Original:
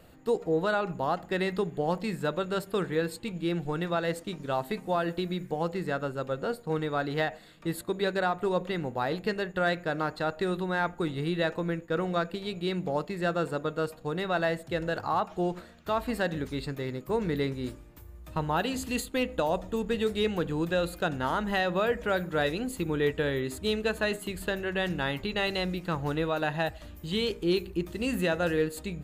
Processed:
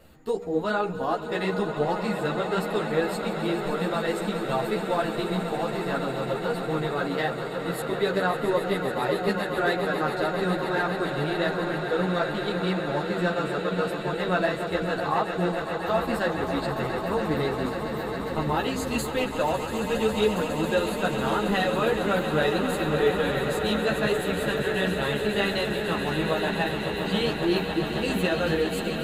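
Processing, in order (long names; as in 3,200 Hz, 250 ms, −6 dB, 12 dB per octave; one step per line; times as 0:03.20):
echo that builds up and dies away 137 ms, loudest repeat 8, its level −12 dB
string-ensemble chorus
level +4.5 dB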